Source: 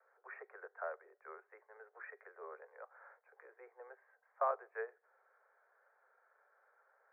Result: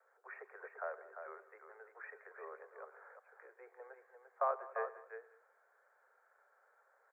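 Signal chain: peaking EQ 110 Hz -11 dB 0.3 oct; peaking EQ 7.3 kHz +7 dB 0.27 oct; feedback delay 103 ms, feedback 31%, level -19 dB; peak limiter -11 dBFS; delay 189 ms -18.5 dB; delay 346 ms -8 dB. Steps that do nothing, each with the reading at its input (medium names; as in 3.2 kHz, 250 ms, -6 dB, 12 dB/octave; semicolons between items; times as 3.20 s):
peaking EQ 110 Hz: input has nothing below 360 Hz; peaking EQ 7.3 kHz: input has nothing above 2 kHz; peak limiter -11 dBFS: peak at its input -24.0 dBFS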